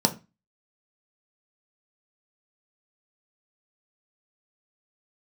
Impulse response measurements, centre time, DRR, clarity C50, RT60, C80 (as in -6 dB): 7 ms, 4.0 dB, 16.0 dB, 0.25 s, 22.5 dB